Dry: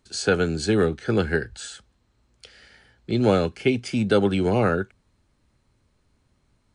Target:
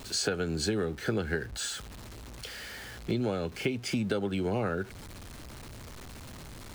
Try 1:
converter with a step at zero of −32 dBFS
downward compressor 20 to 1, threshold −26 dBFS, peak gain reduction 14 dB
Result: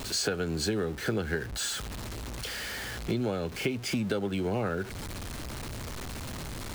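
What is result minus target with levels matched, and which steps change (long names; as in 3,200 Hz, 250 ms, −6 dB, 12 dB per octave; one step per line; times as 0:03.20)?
converter with a step at zero: distortion +7 dB
change: converter with a step at zero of −39.5 dBFS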